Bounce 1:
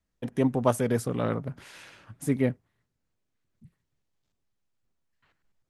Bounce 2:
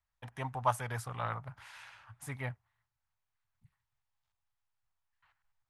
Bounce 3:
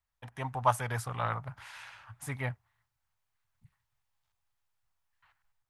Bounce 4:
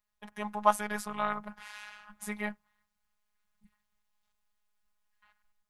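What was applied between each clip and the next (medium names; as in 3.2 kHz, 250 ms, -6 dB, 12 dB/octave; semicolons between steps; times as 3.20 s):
FFT filter 120 Hz 0 dB, 200 Hz -17 dB, 320 Hz -17 dB, 490 Hz -12 dB, 850 Hz +8 dB, 6.3 kHz -1 dB; trim -7 dB
level rider gain up to 4 dB
robot voice 209 Hz; trim +3.5 dB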